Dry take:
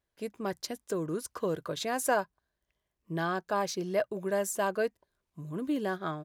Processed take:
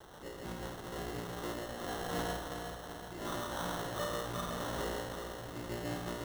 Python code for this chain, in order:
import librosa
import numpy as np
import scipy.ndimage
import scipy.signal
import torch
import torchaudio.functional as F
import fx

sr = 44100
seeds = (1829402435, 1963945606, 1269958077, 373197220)

p1 = fx.lower_of_two(x, sr, delay_ms=9.1)
p2 = fx.whisperise(p1, sr, seeds[0])
p3 = fx.comb_fb(p2, sr, f0_hz=59.0, decay_s=0.85, harmonics='all', damping=0.0, mix_pct=100)
p4 = fx.echo_feedback(p3, sr, ms=371, feedback_pct=54, wet_db=-6.0)
p5 = fx.quant_dither(p4, sr, seeds[1], bits=8, dither='triangular')
p6 = p4 + F.gain(torch.from_numpy(p5), -8.5).numpy()
p7 = fx.notch_comb(p6, sr, f0_hz=220.0)
p8 = p7 + fx.echo_single(p7, sr, ms=137, db=-3.5, dry=0)
p9 = fx.sample_hold(p8, sr, seeds[2], rate_hz=2400.0, jitter_pct=0)
y = F.gain(torch.from_numpy(p9), 3.5).numpy()